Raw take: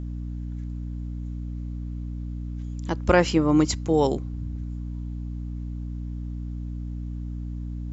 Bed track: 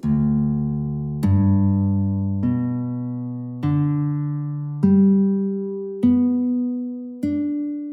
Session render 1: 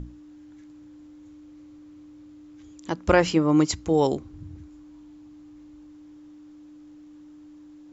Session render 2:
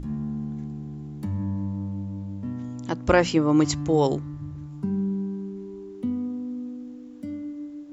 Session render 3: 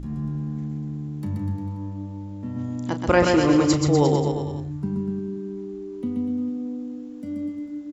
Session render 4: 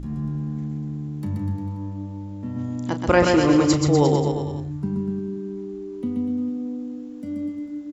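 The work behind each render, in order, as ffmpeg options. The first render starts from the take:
-af "bandreject=f=60:t=h:w=6,bandreject=f=120:t=h:w=6,bandreject=f=180:t=h:w=6,bandreject=f=240:t=h:w=6"
-filter_complex "[1:a]volume=0.266[s0];[0:a][s0]amix=inputs=2:normalize=0"
-filter_complex "[0:a]asplit=2[s0][s1];[s1]adelay=34,volume=0.282[s2];[s0][s2]amix=inputs=2:normalize=0,aecho=1:1:130|247|352.3|447.1|532.4:0.631|0.398|0.251|0.158|0.1"
-af "volume=1.12"

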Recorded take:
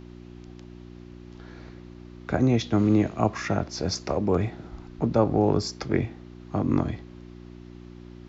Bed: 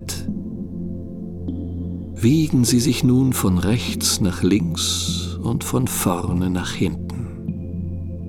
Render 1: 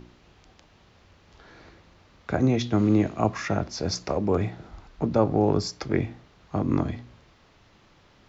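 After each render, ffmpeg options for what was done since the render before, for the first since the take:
-af "bandreject=f=60:t=h:w=4,bandreject=f=120:t=h:w=4,bandreject=f=180:t=h:w=4,bandreject=f=240:t=h:w=4,bandreject=f=300:t=h:w=4,bandreject=f=360:t=h:w=4"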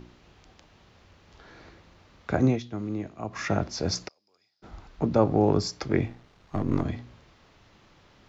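-filter_complex "[0:a]asplit=3[s0][s1][s2];[s0]afade=t=out:st=4.07:d=0.02[s3];[s1]bandpass=f=5000:t=q:w=20,afade=t=in:st=4.07:d=0.02,afade=t=out:st=4.62:d=0.02[s4];[s2]afade=t=in:st=4.62:d=0.02[s5];[s3][s4][s5]amix=inputs=3:normalize=0,asettb=1/sr,asplit=3[s6][s7][s8];[s6]atrim=end=6.084[s9];[s7]atrim=start=6.08:end=6.85,asetpts=PTS-STARTPTS,afade=t=in:d=0.004:c=qsin,afade=t=out:st=0.766:d=0.004:c=qsin,aeval=exprs='if(lt(val(0),0),0.447*val(0),val(0))':c=same[s10];[s8]atrim=start=6.846[s11];[s9][s10]acrossfade=d=0.004:c1=hsin:c2=qsin[s12];[s12][s11]acrossfade=d=0.004:c1=qsin:c2=hsin,asplit=3[s13][s14][s15];[s13]atrim=end=2.61,asetpts=PTS-STARTPTS,afade=t=out:st=2.49:d=0.12:silence=0.266073[s16];[s14]atrim=start=2.61:end=3.3,asetpts=PTS-STARTPTS,volume=0.266[s17];[s15]atrim=start=3.3,asetpts=PTS-STARTPTS,afade=t=in:d=0.12:silence=0.266073[s18];[s16][s17][s18]concat=n=3:v=0:a=1"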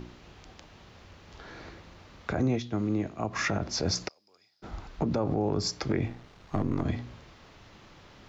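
-filter_complex "[0:a]asplit=2[s0][s1];[s1]acompressor=threshold=0.0282:ratio=6,volume=0.708[s2];[s0][s2]amix=inputs=2:normalize=0,alimiter=limit=0.126:level=0:latency=1:release=81"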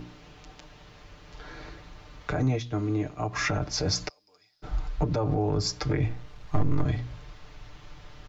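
-af "asubboost=boost=5.5:cutoff=84,aecho=1:1:6.7:0.71"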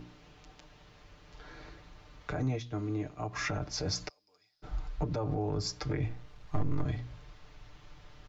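-af "volume=0.473"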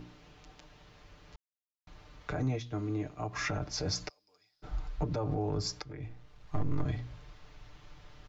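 -filter_complex "[0:a]asplit=4[s0][s1][s2][s3];[s0]atrim=end=1.36,asetpts=PTS-STARTPTS,afade=t=out:st=1.356:d=0.004:c=hsin[s4];[s1]atrim=start=1.36:end=1.87,asetpts=PTS-STARTPTS,volume=0[s5];[s2]atrim=start=1.87:end=5.82,asetpts=PTS-STARTPTS,afade=t=in:d=0.004:c=hsin,afade=t=out:st=3.946:d=0.004:c=hsin:silence=0.158489[s6];[s3]atrim=start=5.82,asetpts=PTS-STARTPTS,afade=t=in:d=0.93:silence=0.158489[s7];[s4][s5][s6][s7]concat=n=4:v=0:a=1"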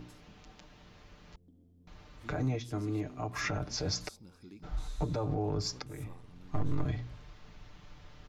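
-filter_complex "[1:a]volume=0.0178[s0];[0:a][s0]amix=inputs=2:normalize=0"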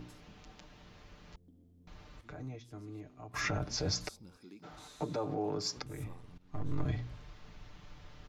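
-filter_complex "[0:a]asettb=1/sr,asplit=3[s0][s1][s2];[s0]atrim=end=4.374[s3];[s1]atrim=start=4.37:end=5.77,asetpts=PTS-STARTPTS,afade=t=in:d=0.004:c=qsin,afade=t=out:st=1.396:d=0.004:c=qsin,highpass=210[s4];[s2]atrim=start=5.766[s5];[s3][s4]acrossfade=d=0.004:c1=hsin:c2=qsin[s6];[s6][s5]acrossfade=d=0.004:c1=qsin:c2=hsin,asplit=4[s7][s8][s9][s10];[s7]atrim=end=2.212[s11];[s8]atrim=start=2.208:end=3.342,asetpts=PTS-STARTPTS,volume=0.251[s12];[s9]atrim=start=3.338:end=6.38,asetpts=PTS-STARTPTS,afade=t=out:st=3.038:d=0.004:c=hsin:silence=0.141254[s13];[s10]atrim=start=6.38,asetpts=PTS-STARTPTS,afade=t=in:d=0.55:silence=0.141254[s14];[s11][s12]acrossfade=d=0.004:c1=hsin:c2=hsin[s15];[s13][s14]concat=n=2:v=0:a=1[s16];[s15][s16]acrossfade=d=0.004:c1=hsin:c2=hsin"

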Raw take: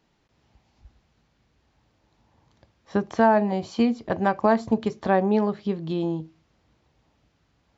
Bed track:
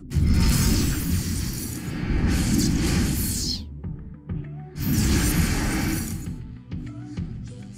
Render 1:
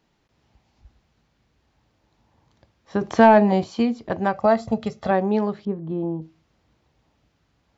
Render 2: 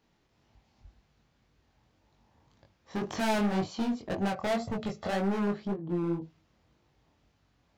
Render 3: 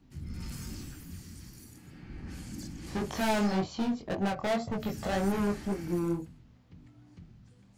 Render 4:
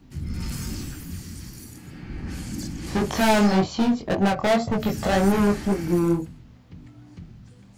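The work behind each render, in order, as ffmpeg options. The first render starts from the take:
-filter_complex "[0:a]asettb=1/sr,asplit=3[s0][s1][s2];[s0]atrim=end=3.014[s3];[s1]atrim=start=3.01:end=3.64,asetpts=PTS-STARTPTS,afade=t=in:d=0.004:c=qsin,afade=t=out:st=0.626:d=0.004:c=qsin,acontrast=71[s4];[s2]atrim=start=3.636[s5];[s3][s4]acrossfade=d=0.004:c1=hsin:c2=qsin[s6];[s6][s5]acrossfade=d=0.004:c1=qsin:c2=hsin,asettb=1/sr,asplit=3[s7][s8][s9];[s7]atrim=end=4.334[s10];[s8]atrim=start=4.33:end=5.11,asetpts=PTS-STARTPTS,afade=t=in:d=0.004:c=qsin,afade=t=out:st=0.776:d=0.004:c=qsin,aecho=1:1:1.5:0.65,atrim=end_sample=34398[s11];[s9]atrim=start=5.106[s12];[s10][s11]acrossfade=d=0.004:c1=hsin:c2=qsin[s13];[s13][s12]acrossfade=d=0.004:c1=qsin:c2=hsin,asettb=1/sr,asplit=3[s14][s15][s16];[s14]atrim=end=5.654[s17];[s15]atrim=start=5.65:end=6.22,asetpts=PTS-STARTPTS,afade=t=in:d=0.004:c=qsin,afade=t=out:st=0.566:d=0.004:c=qsin,lowpass=1100[s18];[s16]atrim=start=6.216[s19];[s17][s18]acrossfade=d=0.004:c1=hsin:c2=qsin[s20];[s20][s19]acrossfade=d=0.004:c1=qsin:c2=hsin"
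-af "volume=15.8,asoftclip=hard,volume=0.0631,flanger=delay=20:depth=4.5:speed=1.9"
-filter_complex "[1:a]volume=0.0944[s0];[0:a][s0]amix=inputs=2:normalize=0"
-af "volume=2.99"

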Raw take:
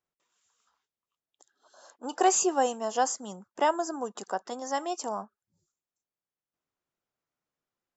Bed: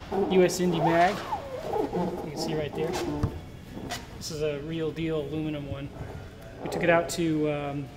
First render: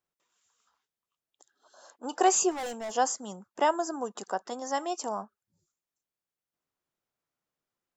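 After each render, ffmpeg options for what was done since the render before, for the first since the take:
-filter_complex "[0:a]asettb=1/sr,asplit=3[s0][s1][s2];[s0]atrim=end=2.514[s3];[s1]atrim=start=2.51:end=2.92,asetpts=PTS-STARTPTS,afade=t=in:d=0.004:c=qsin,afade=t=out:st=0.406:d=0.004:c=qsin,volume=42.2,asoftclip=hard,volume=0.0237[s4];[s2]atrim=start=2.916[s5];[s3][s4]acrossfade=d=0.004:c1=hsin:c2=qsin[s6];[s6][s5]acrossfade=d=0.004:c1=qsin:c2=hsin"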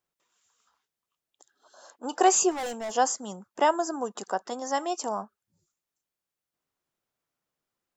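-af "volume=1.33"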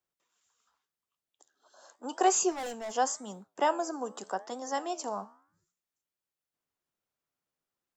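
-filter_complex "[0:a]flanger=delay=7.9:depth=8.7:regen=-86:speed=0.87:shape=triangular,acrossover=split=160|450|3300[s0][s1][s2][s3];[s0]acrusher=bits=5:mode=log:mix=0:aa=0.000001[s4];[s4][s1][s2][s3]amix=inputs=4:normalize=0"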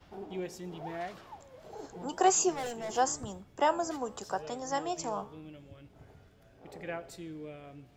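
-filter_complex "[1:a]volume=0.141[s0];[0:a][s0]amix=inputs=2:normalize=0"

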